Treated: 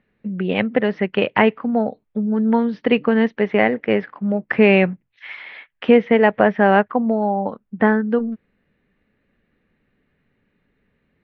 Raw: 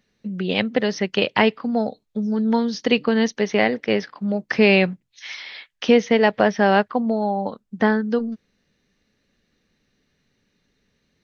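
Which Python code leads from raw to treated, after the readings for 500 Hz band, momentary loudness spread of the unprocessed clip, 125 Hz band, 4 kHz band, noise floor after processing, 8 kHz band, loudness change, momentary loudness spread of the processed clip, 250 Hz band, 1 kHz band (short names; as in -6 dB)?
+2.5 dB, 14 LU, +2.5 dB, -5.5 dB, -69 dBFS, n/a, +2.0 dB, 14 LU, +2.5 dB, +2.5 dB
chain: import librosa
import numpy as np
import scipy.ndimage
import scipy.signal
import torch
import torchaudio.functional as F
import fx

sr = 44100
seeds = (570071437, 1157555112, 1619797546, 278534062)

y = scipy.signal.sosfilt(scipy.signal.butter(4, 2500.0, 'lowpass', fs=sr, output='sos'), x)
y = y * 10.0 ** (2.5 / 20.0)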